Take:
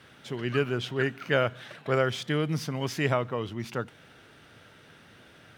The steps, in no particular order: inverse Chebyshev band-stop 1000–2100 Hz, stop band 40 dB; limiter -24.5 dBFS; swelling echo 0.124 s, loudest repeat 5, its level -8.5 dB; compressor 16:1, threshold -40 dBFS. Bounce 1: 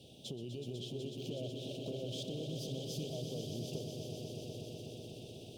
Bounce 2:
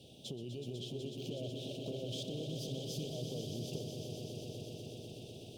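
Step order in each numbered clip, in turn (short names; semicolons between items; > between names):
inverse Chebyshev band-stop > limiter > compressor > swelling echo; limiter > inverse Chebyshev band-stop > compressor > swelling echo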